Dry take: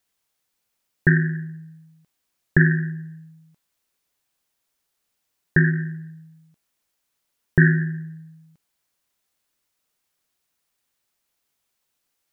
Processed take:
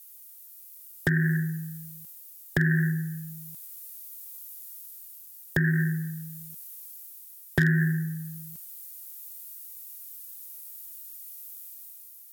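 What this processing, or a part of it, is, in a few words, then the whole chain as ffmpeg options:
FM broadcast chain: -filter_complex "[0:a]highpass=50,dynaudnorm=f=130:g=9:m=1.88,acrossover=split=140|1200[s0][s1][s2];[s0]acompressor=threshold=0.0794:ratio=4[s3];[s1]acompressor=threshold=0.0447:ratio=4[s4];[s2]acompressor=threshold=0.0501:ratio=4[s5];[s3][s4][s5]amix=inputs=3:normalize=0,aemphasis=mode=production:type=50fm,alimiter=limit=0.2:level=0:latency=1:release=254,asoftclip=type=hard:threshold=0.141,lowpass=f=15000:w=0.5412,lowpass=f=15000:w=1.3066,aemphasis=mode=production:type=50fm,volume=1.41"

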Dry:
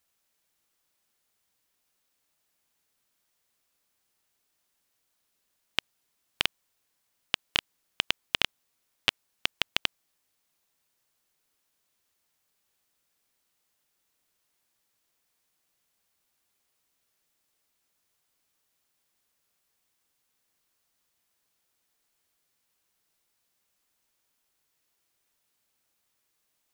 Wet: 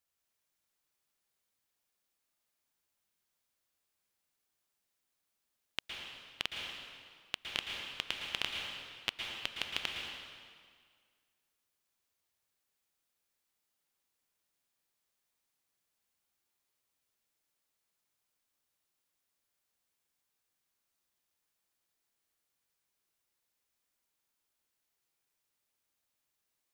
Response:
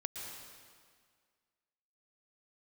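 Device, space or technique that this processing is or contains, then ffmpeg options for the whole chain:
stairwell: -filter_complex "[1:a]atrim=start_sample=2205[s0];[0:a][s0]afir=irnorm=-1:irlink=0,volume=0.447"

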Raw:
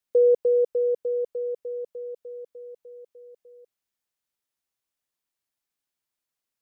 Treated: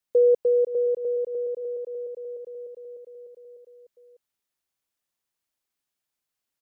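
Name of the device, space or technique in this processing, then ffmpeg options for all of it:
ducked delay: -filter_complex "[0:a]asplit=3[s0][s1][s2];[s1]adelay=520,volume=0.631[s3];[s2]apad=whole_len=314786[s4];[s3][s4]sidechaincompress=threshold=0.0224:ratio=8:attack=16:release=279[s5];[s0][s5]amix=inputs=2:normalize=0,asplit=3[s6][s7][s8];[s6]afade=t=out:st=1.6:d=0.02[s9];[s7]highpass=290,afade=t=in:st=1.6:d=0.02,afade=t=out:st=2.38:d=0.02[s10];[s8]afade=t=in:st=2.38:d=0.02[s11];[s9][s10][s11]amix=inputs=3:normalize=0"

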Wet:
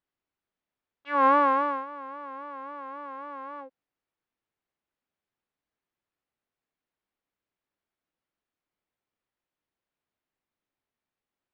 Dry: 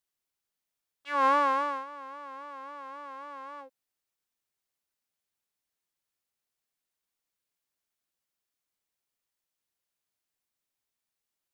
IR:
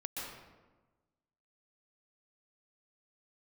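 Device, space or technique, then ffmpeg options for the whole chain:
phone in a pocket: -af "lowpass=3300,equalizer=f=290:t=o:w=0.87:g=3,highshelf=f=2400:g=-8,volume=1.68"

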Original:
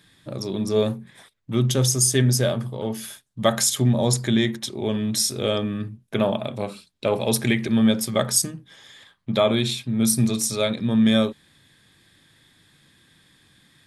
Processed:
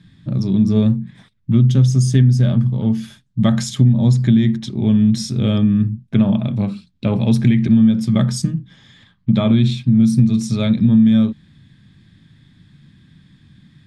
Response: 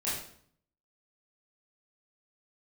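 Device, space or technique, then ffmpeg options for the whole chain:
jukebox: -af "lowpass=5300,lowshelf=f=300:t=q:w=1.5:g=14,acompressor=threshold=0.398:ratio=6,volume=0.891"

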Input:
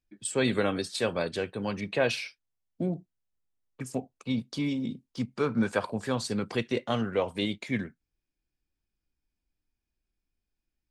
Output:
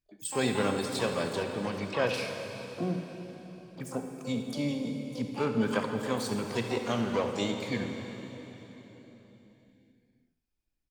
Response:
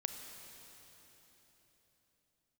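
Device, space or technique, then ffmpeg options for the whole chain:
shimmer-style reverb: -filter_complex "[0:a]aecho=1:1:76|152|228:0.2|0.0479|0.0115,asplit=2[s0][s1];[s1]asetrate=88200,aresample=44100,atempo=0.5,volume=0.355[s2];[s0][s2]amix=inputs=2:normalize=0[s3];[1:a]atrim=start_sample=2205[s4];[s3][s4]afir=irnorm=-1:irlink=0,asettb=1/sr,asplit=3[s5][s6][s7];[s5]atrim=end=1.434[s8];[s6]atrim=start=1.43:end=2.14,asetpts=PTS-STARTPTS,afade=t=in:d=0.004:c=qsin,afade=t=out:st=0.706:d=0.004:c=qsin,acrossover=split=4100[s9][s10];[s10]acompressor=threshold=0.00355:ratio=4:attack=1:release=60[s11];[s9][s11]amix=inputs=2:normalize=0[s12];[s7]atrim=start=2.136[s13];[s8][s12]acrossfade=d=0.004:c1=hsin:c2=qsin[s14];[s14][s13]acrossfade=d=0.004:c1=qsin:c2=hsin,volume=0.794"

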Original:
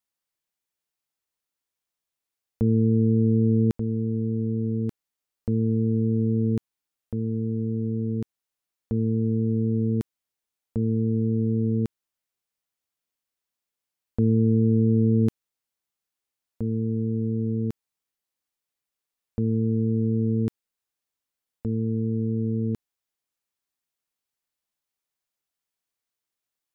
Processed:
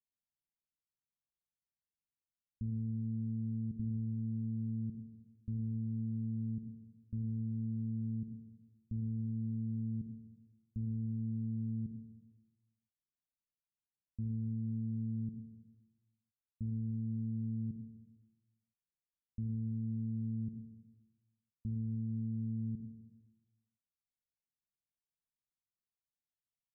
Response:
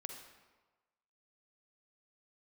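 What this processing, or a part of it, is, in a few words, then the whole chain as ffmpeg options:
club heard from the street: -filter_complex "[0:a]alimiter=limit=0.0631:level=0:latency=1,lowpass=f=210:w=0.5412,lowpass=f=210:w=1.3066[s0];[1:a]atrim=start_sample=2205[s1];[s0][s1]afir=irnorm=-1:irlink=0"

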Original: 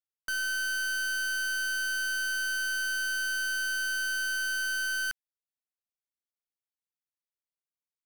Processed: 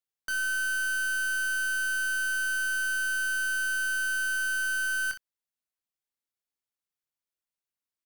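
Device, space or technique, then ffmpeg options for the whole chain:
slapback doubling: -filter_complex "[0:a]asplit=3[s0][s1][s2];[s1]adelay=23,volume=0.398[s3];[s2]adelay=62,volume=0.251[s4];[s0][s3][s4]amix=inputs=3:normalize=0"

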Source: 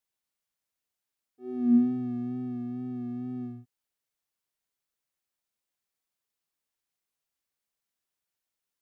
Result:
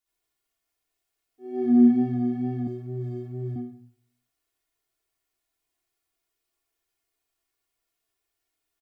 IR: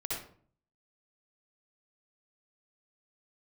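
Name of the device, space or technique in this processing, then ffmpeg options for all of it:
microphone above a desk: -filter_complex "[0:a]aecho=1:1:2.8:0.74[s0];[1:a]atrim=start_sample=2205[s1];[s0][s1]afir=irnorm=-1:irlink=0,asettb=1/sr,asplit=3[s2][s3][s4];[s2]atrim=end=2.674[s5];[s3]atrim=start=2.67:end=3.56,asetpts=PTS-STARTPTS,afade=t=in:d=0.004:c=qsin,afade=t=out:st=0.886:d=0.004:c=qsin,aecho=1:1:2:0.81,atrim=end_sample=39249[s6];[s4]atrim=start=3.556[s7];[s5][s6]acrossfade=d=0.004:c1=hsin:c2=qsin[s8];[s8][s7]acrossfade=d=0.004:c1=qsin:c2=hsin,volume=1.19"

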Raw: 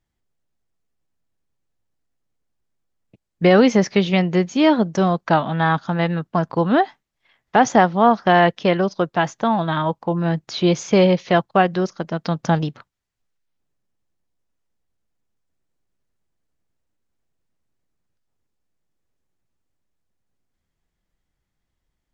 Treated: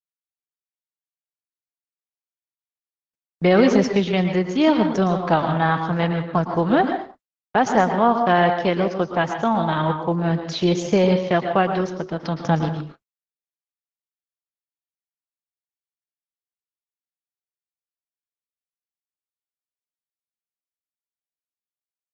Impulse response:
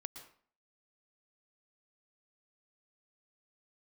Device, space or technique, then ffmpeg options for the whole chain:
speakerphone in a meeting room: -filter_complex "[1:a]atrim=start_sample=2205[s0];[0:a][s0]afir=irnorm=-1:irlink=0,dynaudnorm=f=160:g=11:m=3.35,agate=range=0.00251:threshold=0.0158:ratio=16:detection=peak,volume=0.708" -ar 48000 -c:a libopus -b:a 12k

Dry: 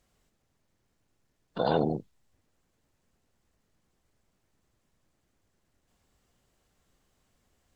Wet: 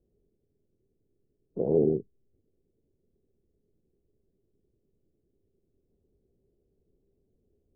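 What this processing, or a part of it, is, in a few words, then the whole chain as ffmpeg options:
under water: -af "lowpass=f=470:w=0.5412,lowpass=f=470:w=1.3066,equalizer=f=400:t=o:w=0.4:g=11.5"

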